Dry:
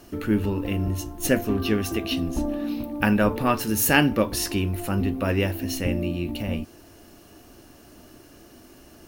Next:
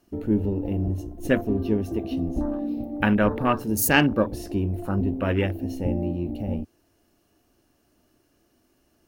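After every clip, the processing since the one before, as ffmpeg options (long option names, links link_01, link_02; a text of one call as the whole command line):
ffmpeg -i in.wav -af "afwtdn=0.0316" out.wav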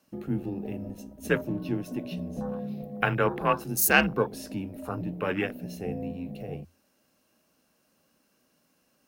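ffmpeg -i in.wav -af "afreqshift=-86,highpass=frequency=380:poles=1" out.wav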